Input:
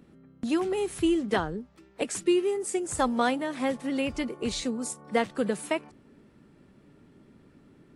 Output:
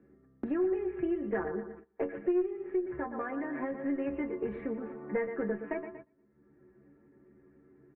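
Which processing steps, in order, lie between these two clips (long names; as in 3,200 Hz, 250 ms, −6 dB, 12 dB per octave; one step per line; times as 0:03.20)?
repeating echo 118 ms, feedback 38%, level −12 dB
0:02.43–0:03.84: downward compressor 4 to 1, threshold −27 dBFS, peak gain reduction 7.5 dB
stiff-string resonator 67 Hz, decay 0.27 s, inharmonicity 0.008
tube saturation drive 27 dB, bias 0.45
noise gate −56 dBFS, range −21 dB
Butterworth low-pass 2,200 Hz 48 dB per octave
hollow resonant body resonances 370/1,700 Hz, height 10 dB, ringing for 25 ms
multiband upward and downward compressor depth 70%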